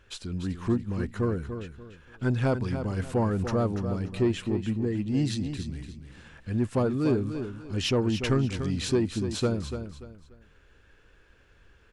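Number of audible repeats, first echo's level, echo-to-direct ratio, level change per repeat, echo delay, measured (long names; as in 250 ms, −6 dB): 3, −9.0 dB, −8.5 dB, −11.0 dB, 291 ms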